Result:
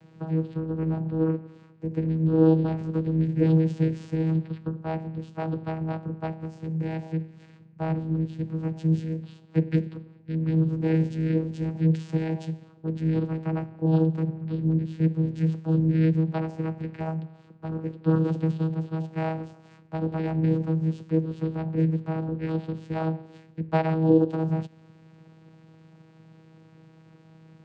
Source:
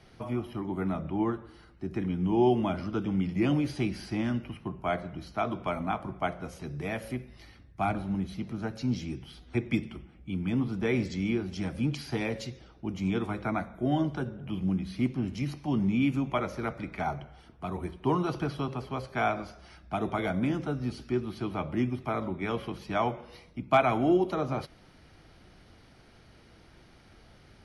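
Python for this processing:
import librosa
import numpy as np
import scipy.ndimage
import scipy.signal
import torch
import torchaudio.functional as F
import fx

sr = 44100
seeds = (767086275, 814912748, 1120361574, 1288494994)

y = fx.dynamic_eq(x, sr, hz=1100.0, q=1.2, threshold_db=-46.0, ratio=4.0, max_db=-7)
y = fx.vocoder(y, sr, bands=8, carrier='saw', carrier_hz=160.0)
y = y * 10.0 ** (6.5 / 20.0)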